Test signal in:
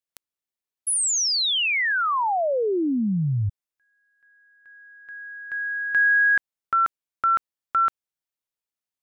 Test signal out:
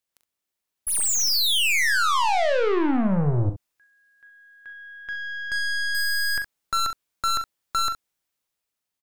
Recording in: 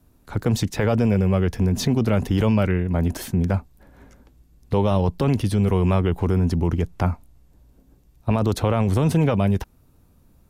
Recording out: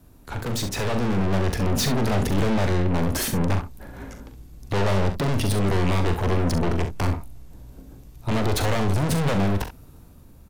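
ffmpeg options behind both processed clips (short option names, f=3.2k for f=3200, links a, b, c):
-af "aeval=exprs='(tanh(44.7*val(0)+0.35)-tanh(0.35))/44.7':c=same,aecho=1:1:41|67:0.355|0.282,dynaudnorm=f=220:g=9:m=5dB,volume=6.5dB"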